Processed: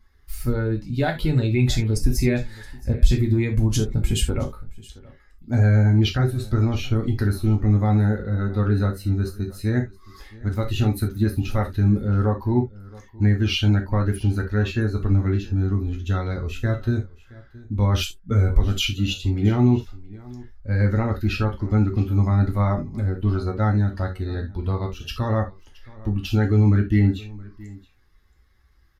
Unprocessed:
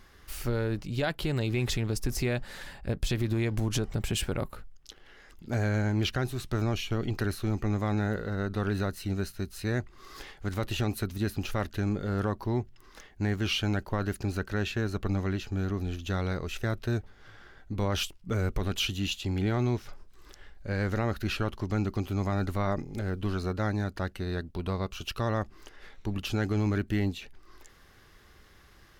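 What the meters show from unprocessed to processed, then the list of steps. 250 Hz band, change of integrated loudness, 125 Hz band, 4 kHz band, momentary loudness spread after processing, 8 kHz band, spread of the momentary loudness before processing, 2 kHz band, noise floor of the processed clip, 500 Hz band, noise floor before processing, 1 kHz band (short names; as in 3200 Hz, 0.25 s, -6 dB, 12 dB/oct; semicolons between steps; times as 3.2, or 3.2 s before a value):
+8.5 dB, +9.0 dB, +11.0 dB, +4.5 dB, 10 LU, +4.0 dB, 7 LU, +3.5 dB, -54 dBFS, +5.0 dB, -56 dBFS, +5.0 dB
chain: per-bin expansion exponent 1.5; low shelf 180 Hz +10.5 dB; echo 0.671 s -21.5 dB; non-linear reverb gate 0.1 s falling, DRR 1 dB; downsampling 32000 Hz; gain +5 dB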